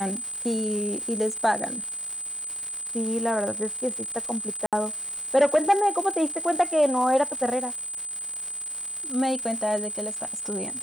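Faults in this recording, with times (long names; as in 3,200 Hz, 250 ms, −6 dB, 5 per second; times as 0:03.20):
surface crackle 340 per second −32 dBFS
whistle 8,100 Hz −31 dBFS
0:04.66–0:04.73: drop-out 67 ms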